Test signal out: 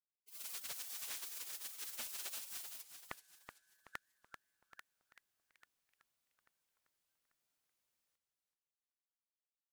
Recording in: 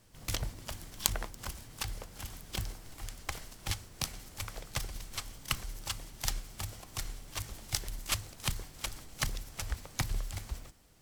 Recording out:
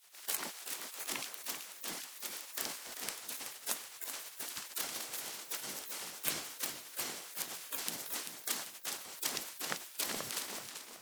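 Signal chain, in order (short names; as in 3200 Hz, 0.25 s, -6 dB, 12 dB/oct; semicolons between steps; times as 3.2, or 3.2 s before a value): spectral gate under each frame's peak -25 dB weak; warbling echo 0.383 s, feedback 39%, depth 200 cents, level -8 dB; gain +9 dB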